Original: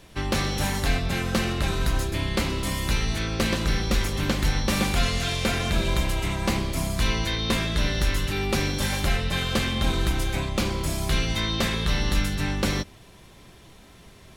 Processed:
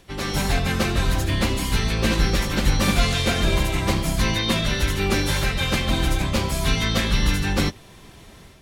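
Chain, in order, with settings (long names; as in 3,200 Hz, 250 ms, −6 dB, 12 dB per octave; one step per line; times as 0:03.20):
automatic gain control gain up to 7.5 dB
time stretch by phase vocoder 0.6×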